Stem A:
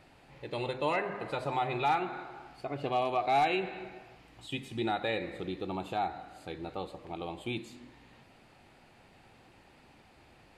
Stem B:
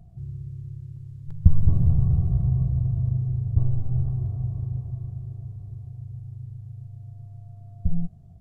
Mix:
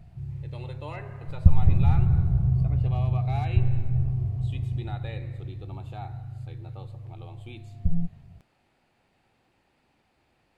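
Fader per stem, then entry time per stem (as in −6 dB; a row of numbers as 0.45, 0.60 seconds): −9.5, −0.5 decibels; 0.00, 0.00 seconds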